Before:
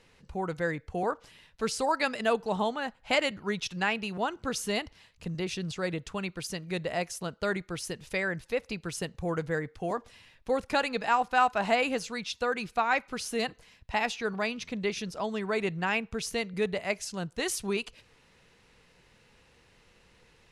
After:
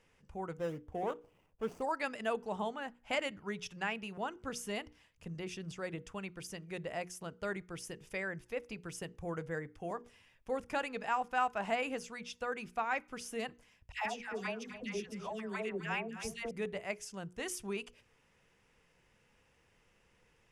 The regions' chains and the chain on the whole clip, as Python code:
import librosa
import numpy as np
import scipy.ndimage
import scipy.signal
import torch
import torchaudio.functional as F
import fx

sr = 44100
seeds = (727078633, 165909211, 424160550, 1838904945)

y = fx.chain(x, sr, fx.median_filter(points=25),
    fx.peak_eq(hz=520.0, db=3.5, octaves=1.9), at=(0.57, 1.82))
y = fx.chain(y, sr, fx.dispersion(late='lows', ms=120.0, hz=940.0),
    fx.echo_single(ms=261, db=-12.5), at=(13.92, 16.51))
y = fx.peak_eq(y, sr, hz=4100.0, db=-13.0, octaves=0.25)
y = fx.hum_notches(y, sr, base_hz=60, count=8)
y = F.gain(torch.from_numpy(y), -8.0).numpy()